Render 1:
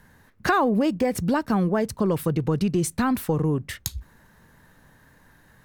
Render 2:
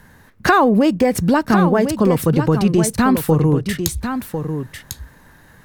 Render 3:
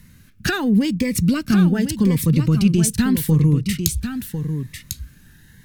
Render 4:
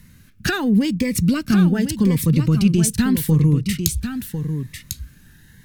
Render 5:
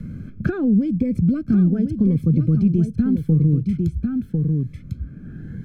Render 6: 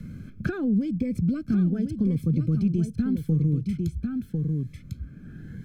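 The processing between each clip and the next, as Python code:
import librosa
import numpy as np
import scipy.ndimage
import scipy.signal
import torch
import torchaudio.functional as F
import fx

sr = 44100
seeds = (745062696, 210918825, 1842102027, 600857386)

y1 = x + 10.0 ** (-8.0 / 20.0) * np.pad(x, (int(1049 * sr / 1000.0), 0))[:len(x)]
y1 = y1 * librosa.db_to_amplitude(7.5)
y2 = fx.curve_eq(y1, sr, hz=(190.0, 720.0, 2300.0), db=(0, -18, 0))
y2 = fx.notch_cascade(y2, sr, direction='rising', hz=0.83)
y2 = y2 * librosa.db_to_amplitude(1.5)
y3 = y2
y4 = scipy.signal.lfilter(np.full(47, 1.0 / 47), 1.0, y3)
y4 = fx.band_squash(y4, sr, depth_pct=70)
y5 = fx.high_shelf(y4, sr, hz=2000.0, db=10.5)
y5 = y5 * librosa.db_to_amplitude(-6.5)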